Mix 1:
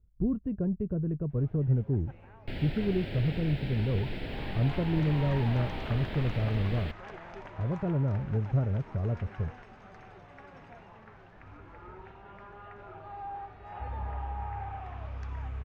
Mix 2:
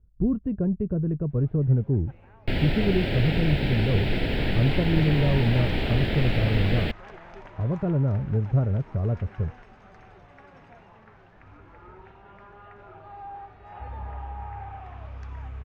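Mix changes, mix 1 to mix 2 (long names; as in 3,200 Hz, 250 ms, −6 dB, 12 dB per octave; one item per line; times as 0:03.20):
speech +5.0 dB
second sound +11.5 dB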